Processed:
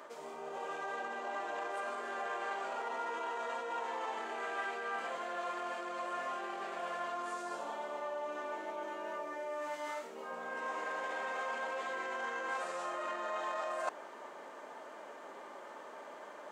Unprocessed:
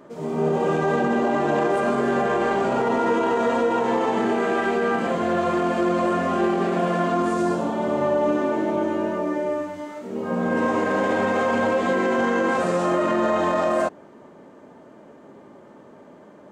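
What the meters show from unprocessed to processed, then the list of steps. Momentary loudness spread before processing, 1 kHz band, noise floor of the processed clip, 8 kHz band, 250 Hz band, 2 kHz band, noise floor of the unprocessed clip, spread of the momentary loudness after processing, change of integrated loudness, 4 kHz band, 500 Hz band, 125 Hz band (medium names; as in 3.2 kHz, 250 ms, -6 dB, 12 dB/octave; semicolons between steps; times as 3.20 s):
4 LU, -14.0 dB, -50 dBFS, -11.5 dB, -29.0 dB, -12.0 dB, -47 dBFS, 11 LU, -18.0 dB, -11.5 dB, -19.5 dB, under -35 dB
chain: reverse; compression 10:1, threshold -36 dBFS, peak gain reduction 18.5 dB; reverse; high-pass 800 Hz 12 dB/octave; trim +5 dB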